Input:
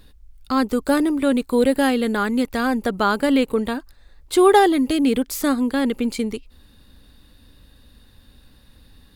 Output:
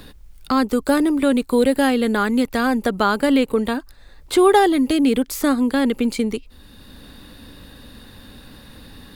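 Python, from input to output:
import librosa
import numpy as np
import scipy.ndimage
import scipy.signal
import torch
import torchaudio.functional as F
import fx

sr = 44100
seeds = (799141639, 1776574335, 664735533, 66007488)

y = fx.band_squash(x, sr, depth_pct=40)
y = y * 10.0 ** (1.5 / 20.0)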